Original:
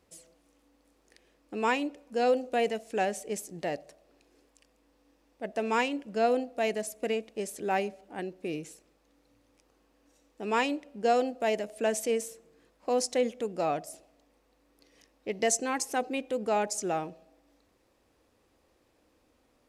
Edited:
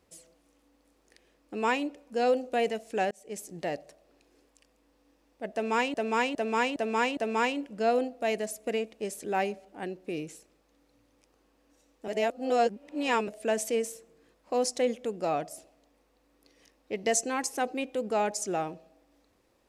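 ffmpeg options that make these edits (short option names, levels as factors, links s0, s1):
-filter_complex "[0:a]asplit=8[s0][s1][s2][s3][s4][s5][s6][s7];[s0]atrim=end=3.11,asetpts=PTS-STARTPTS,afade=t=out:st=3.106:d=0.004:c=hsin[s8];[s1]atrim=start=3.11:end=5.942,asetpts=PTS-STARTPTS,afade=t=in:d=0.38[s9];[s2]atrim=start=5.528:end=5.942[s10];[s3]atrim=start=5.528:end=5.942[s11];[s4]atrim=start=5.528:end=5.942[s12];[s5]atrim=start=5.528:end=10.442[s13];[s6]atrim=start=10.438:end=11.642,asetpts=PTS-STARTPTS,areverse[s14];[s7]atrim=start=11.638[s15];[s8][s9]concat=n=2:v=0:a=1[s16];[s16][s10]acrossfade=d=0.004:c1=hsin:c2=hsin[s17];[s17][s11]acrossfade=d=0.004:c1=hsin:c2=hsin[s18];[s18][s12]acrossfade=d=0.004:c1=hsin:c2=hsin[s19];[s19][s13]acrossfade=d=0.004:c1=hsin:c2=hsin[s20];[s20][s14]acrossfade=d=0.004:c1=hsin:c2=hsin[s21];[s21][s15]acrossfade=d=0.004:c1=hsin:c2=hsin"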